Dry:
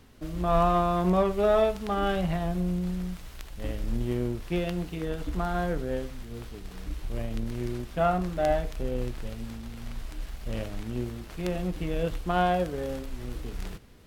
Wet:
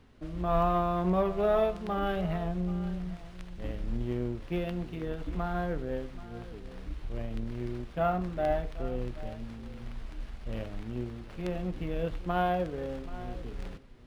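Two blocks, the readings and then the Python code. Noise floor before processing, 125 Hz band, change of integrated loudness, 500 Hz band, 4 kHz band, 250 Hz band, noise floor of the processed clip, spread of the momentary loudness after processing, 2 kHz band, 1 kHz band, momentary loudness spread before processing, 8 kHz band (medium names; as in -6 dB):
-44 dBFS, -3.5 dB, -3.5 dB, -3.5 dB, -6.5 dB, -3.5 dB, -46 dBFS, 16 LU, -4.5 dB, -3.5 dB, 17 LU, under -10 dB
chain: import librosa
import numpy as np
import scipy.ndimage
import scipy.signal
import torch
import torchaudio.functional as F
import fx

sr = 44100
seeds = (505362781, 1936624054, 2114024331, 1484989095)

y = fx.high_shelf(x, sr, hz=7600.0, db=-12.0)
y = y + 10.0 ** (-17.0 / 20.0) * np.pad(y, (int(781 * sr / 1000.0), 0))[:len(y)]
y = np.interp(np.arange(len(y)), np.arange(len(y))[::3], y[::3])
y = F.gain(torch.from_numpy(y), -3.5).numpy()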